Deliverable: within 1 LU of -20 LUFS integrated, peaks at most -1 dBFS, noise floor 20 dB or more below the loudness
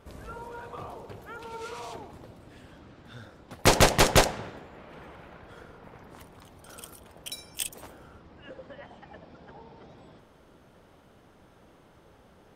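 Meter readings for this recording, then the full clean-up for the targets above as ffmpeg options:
loudness -26.5 LUFS; peak -8.0 dBFS; loudness target -20.0 LUFS
-> -af "volume=6.5dB"

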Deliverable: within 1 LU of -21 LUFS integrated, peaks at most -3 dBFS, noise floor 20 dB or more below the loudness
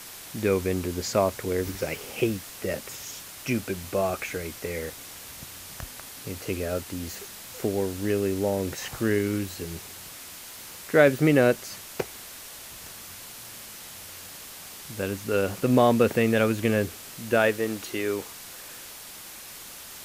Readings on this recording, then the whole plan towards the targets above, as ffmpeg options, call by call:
noise floor -43 dBFS; noise floor target -47 dBFS; loudness -26.5 LUFS; peak -6.0 dBFS; loudness target -21.0 LUFS
-> -af "afftdn=nr=6:nf=-43"
-af "volume=5.5dB,alimiter=limit=-3dB:level=0:latency=1"

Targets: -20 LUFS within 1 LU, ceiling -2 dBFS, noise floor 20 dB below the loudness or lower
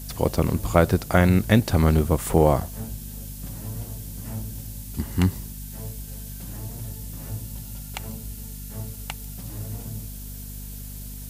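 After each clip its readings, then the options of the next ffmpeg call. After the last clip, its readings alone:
hum 50 Hz; harmonics up to 250 Hz; hum level -36 dBFS; noise floor -37 dBFS; noise floor target -46 dBFS; loudness -25.5 LUFS; peak -2.0 dBFS; loudness target -20.0 LUFS
-> -af "bandreject=f=50:t=h:w=4,bandreject=f=100:t=h:w=4,bandreject=f=150:t=h:w=4,bandreject=f=200:t=h:w=4,bandreject=f=250:t=h:w=4"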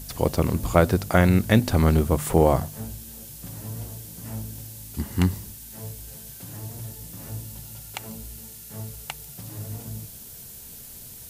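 hum none; noise floor -42 dBFS; noise floor target -45 dBFS
-> -af "afftdn=nr=6:nf=-42"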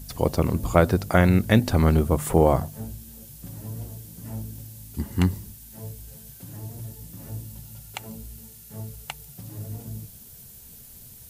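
noise floor -46 dBFS; loudness -23.0 LUFS; peak -2.5 dBFS; loudness target -20.0 LUFS
-> -af "volume=3dB,alimiter=limit=-2dB:level=0:latency=1"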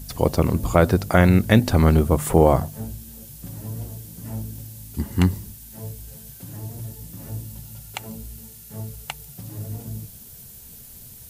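loudness -20.5 LUFS; peak -2.0 dBFS; noise floor -43 dBFS

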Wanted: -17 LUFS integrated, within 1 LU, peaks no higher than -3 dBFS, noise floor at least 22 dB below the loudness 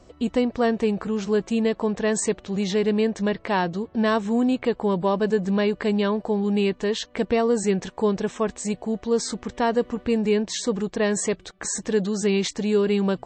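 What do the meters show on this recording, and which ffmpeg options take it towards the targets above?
loudness -24.0 LUFS; peak -11.0 dBFS; loudness target -17.0 LUFS
-> -af "volume=7dB"

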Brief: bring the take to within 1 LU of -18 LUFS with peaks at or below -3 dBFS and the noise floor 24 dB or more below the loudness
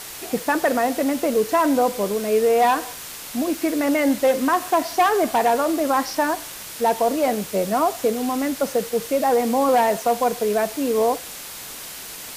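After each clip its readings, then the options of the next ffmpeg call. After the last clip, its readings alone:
noise floor -36 dBFS; noise floor target -45 dBFS; loudness -21.0 LUFS; peak -9.5 dBFS; loudness target -18.0 LUFS
-> -af "afftdn=nr=9:nf=-36"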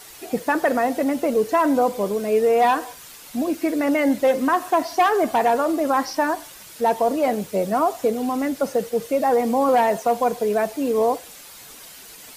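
noise floor -43 dBFS; noise floor target -45 dBFS
-> -af "afftdn=nr=6:nf=-43"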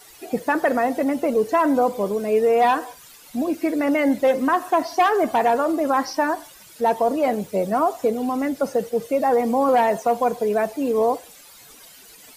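noise floor -47 dBFS; loudness -21.0 LUFS; peak -10.0 dBFS; loudness target -18.0 LUFS
-> -af "volume=3dB"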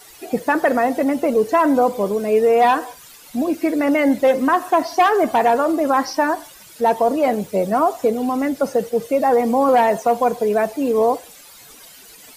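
loudness -18.0 LUFS; peak -7.0 dBFS; noise floor -44 dBFS

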